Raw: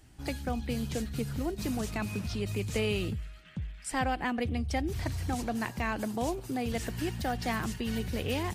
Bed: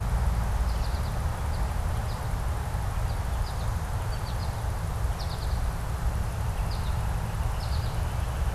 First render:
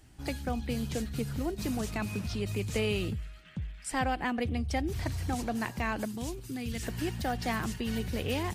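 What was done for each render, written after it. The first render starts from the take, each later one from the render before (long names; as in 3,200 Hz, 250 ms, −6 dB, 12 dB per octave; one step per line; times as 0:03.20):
0:06.05–0:06.83: parametric band 700 Hz −14 dB 1.6 octaves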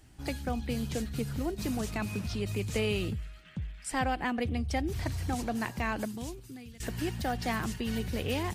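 0:06.04–0:06.80: fade out, to −19 dB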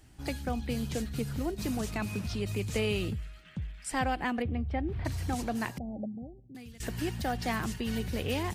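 0:04.42–0:05.05: high-frequency loss of the air 470 metres
0:05.78–0:06.55: Chebyshev low-pass with heavy ripple 810 Hz, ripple 9 dB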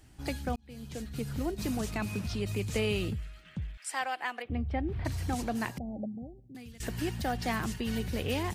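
0:00.56–0:01.41: fade in
0:03.77–0:04.50: high-pass filter 740 Hz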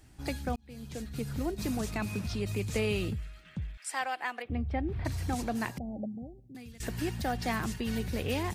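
notch filter 3,000 Hz, Q 22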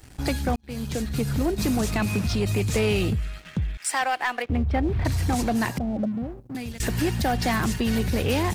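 leveller curve on the samples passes 2
in parallel at +2.5 dB: downward compressor, threshold −36 dBFS, peak gain reduction 13 dB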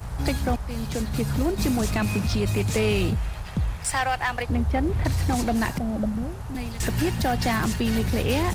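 mix in bed −6 dB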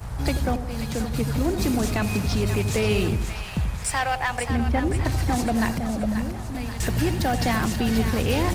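echo with a time of its own for lows and highs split 730 Hz, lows 84 ms, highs 533 ms, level −8.5 dB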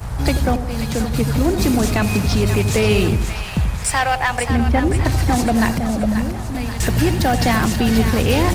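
level +6.5 dB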